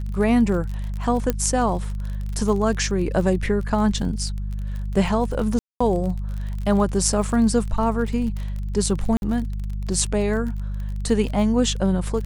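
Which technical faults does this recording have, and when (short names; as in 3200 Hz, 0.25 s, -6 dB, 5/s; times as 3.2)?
crackle 37/s -29 dBFS
hum 50 Hz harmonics 4 -27 dBFS
1.3 pop -7 dBFS
5.59–5.8 gap 0.215 s
9.17–9.22 gap 51 ms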